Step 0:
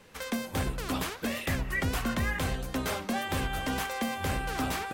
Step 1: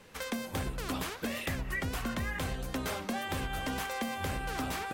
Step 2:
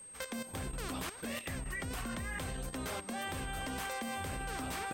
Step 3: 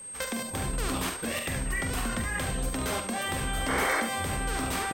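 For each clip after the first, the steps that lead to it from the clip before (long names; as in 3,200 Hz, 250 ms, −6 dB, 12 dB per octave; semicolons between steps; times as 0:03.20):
downward compressor, threshold −31 dBFS, peak gain reduction 6 dB
output level in coarse steps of 13 dB; steady tone 8,400 Hz −49 dBFS
sound drawn into the spectrogram noise, 0:03.68–0:04.01, 270–2,300 Hz −37 dBFS; on a send: ambience of single reflections 45 ms −7.5 dB, 72 ms −8.5 dB; on the sum: level +7.5 dB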